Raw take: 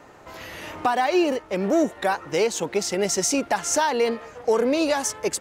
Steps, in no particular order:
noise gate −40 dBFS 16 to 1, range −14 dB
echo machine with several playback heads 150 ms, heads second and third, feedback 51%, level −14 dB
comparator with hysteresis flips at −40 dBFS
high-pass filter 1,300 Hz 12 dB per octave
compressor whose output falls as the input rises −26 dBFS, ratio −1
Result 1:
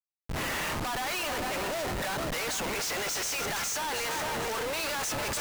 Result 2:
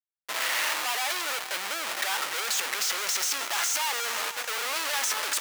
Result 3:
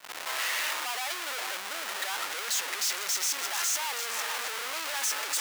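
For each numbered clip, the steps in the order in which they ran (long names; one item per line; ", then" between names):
noise gate, then high-pass filter, then compressor whose output falls as the input rises, then echo machine with several playback heads, then comparator with hysteresis
noise gate, then comparator with hysteresis, then high-pass filter, then compressor whose output falls as the input rises, then echo machine with several playback heads
compressor whose output falls as the input rises, then echo machine with several playback heads, then comparator with hysteresis, then high-pass filter, then noise gate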